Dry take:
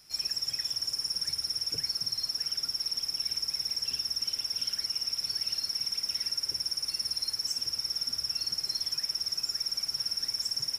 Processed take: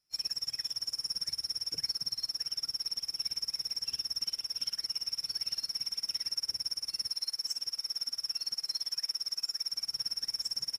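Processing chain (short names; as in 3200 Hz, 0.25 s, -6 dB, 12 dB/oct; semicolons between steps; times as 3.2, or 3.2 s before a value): 7.09–9.73 low shelf 240 Hz -11.5 dB; upward expander 2.5:1, over -45 dBFS; gain -1 dB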